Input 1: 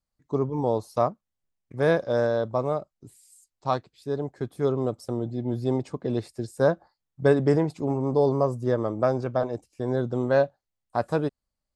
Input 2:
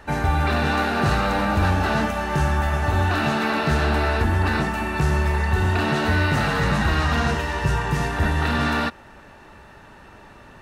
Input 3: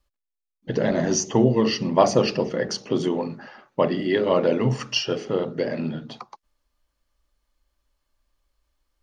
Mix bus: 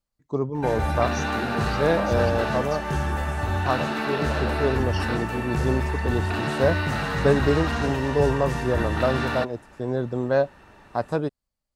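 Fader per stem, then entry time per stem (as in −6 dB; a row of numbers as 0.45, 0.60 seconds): 0.0, −5.0, −14.5 decibels; 0.00, 0.55, 0.00 seconds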